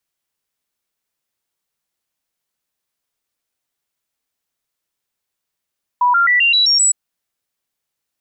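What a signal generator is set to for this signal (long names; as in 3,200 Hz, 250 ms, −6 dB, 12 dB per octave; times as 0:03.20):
stepped sweep 981 Hz up, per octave 2, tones 7, 0.13 s, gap 0.00 s −10 dBFS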